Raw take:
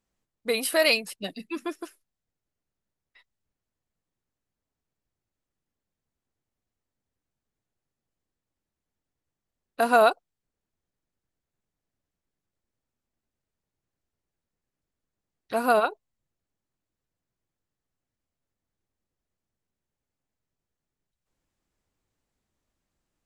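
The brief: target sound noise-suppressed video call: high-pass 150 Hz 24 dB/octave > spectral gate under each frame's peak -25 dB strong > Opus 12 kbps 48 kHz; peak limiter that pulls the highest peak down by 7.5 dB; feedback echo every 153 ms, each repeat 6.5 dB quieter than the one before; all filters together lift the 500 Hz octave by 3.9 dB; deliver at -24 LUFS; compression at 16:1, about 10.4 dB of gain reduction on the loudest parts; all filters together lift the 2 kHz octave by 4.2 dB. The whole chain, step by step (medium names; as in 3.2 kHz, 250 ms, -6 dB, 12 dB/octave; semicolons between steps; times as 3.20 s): peaking EQ 500 Hz +5 dB; peaking EQ 2 kHz +5.5 dB; compression 16:1, threshold -21 dBFS; peak limiter -19 dBFS; high-pass 150 Hz 24 dB/octave; feedback delay 153 ms, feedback 47%, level -6.5 dB; spectral gate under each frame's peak -25 dB strong; trim +7 dB; Opus 12 kbps 48 kHz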